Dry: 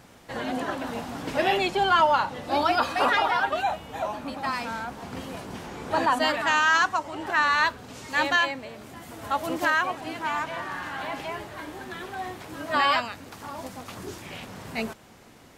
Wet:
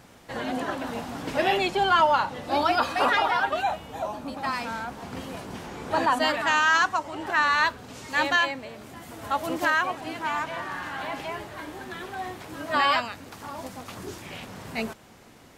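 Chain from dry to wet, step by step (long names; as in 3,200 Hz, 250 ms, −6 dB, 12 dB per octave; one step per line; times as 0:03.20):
0:03.83–0:04.37: dynamic equaliser 2,000 Hz, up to −6 dB, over −48 dBFS, Q 0.89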